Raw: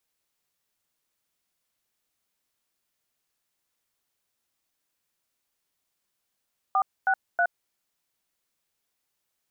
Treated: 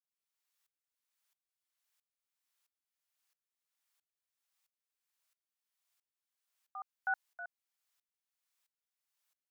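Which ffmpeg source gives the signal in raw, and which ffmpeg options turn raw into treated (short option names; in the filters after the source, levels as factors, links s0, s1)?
-f lavfi -i "aevalsrc='0.0794*clip(min(mod(t,0.319),0.07-mod(t,0.319))/0.002,0,1)*(eq(floor(t/0.319),0)*(sin(2*PI*770*mod(t,0.319))+sin(2*PI*1209*mod(t,0.319)))+eq(floor(t/0.319),1)*(sin(2*PI*770*mod(t,0.319))+sin(2*PI*1477*mod(t,0.319)))+eq(floor(t/0.319),2)*(sin(2*PI*697*mod(t,0.319))+sin(2*PI*1477*mod(t,0.319))))':d=0.957:s=44100"
-af "highpass=880,aeval=exprs='val(0)*pow(10,-22*if(lt(mod(-1.5*n/s,1),2*abs(-1.5)/1000),1-mod(-1.5*n/s,1)/(2*abs(-1.5)/1000),(mod(-1.5*n/s,1)-2*abs(-1.5)/1000)/(1-2*abs(-1.5)/1000))/20)':c=same"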